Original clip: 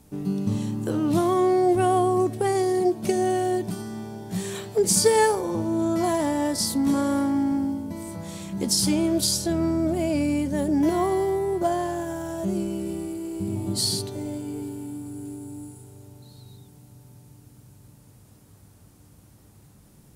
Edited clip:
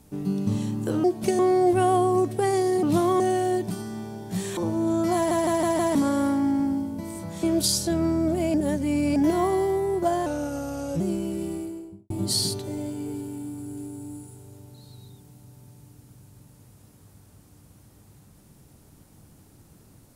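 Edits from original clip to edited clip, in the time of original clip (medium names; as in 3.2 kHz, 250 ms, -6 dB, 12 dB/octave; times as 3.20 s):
1.04–1.41 s: swap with 2.85–3.20 s
4.57–5.49 s: delete
6.07 s: stutter in place 0.16 s, 5 plays
8.35–9.02 s: delete
10.13–10.75 s: reverse
11.85–12.48 s: speed 85%
13.00–13.58 s: studio fade out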